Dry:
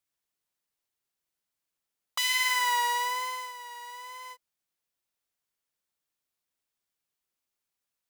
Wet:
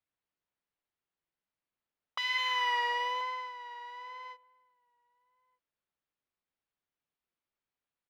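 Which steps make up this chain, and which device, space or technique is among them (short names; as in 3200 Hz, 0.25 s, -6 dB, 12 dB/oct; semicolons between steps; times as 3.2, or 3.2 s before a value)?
2.38–3.21 comb 1.7 ms, depth 68%; shout across a valley (air absorption 290 m; outdoor echo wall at 210 m, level -28 dB)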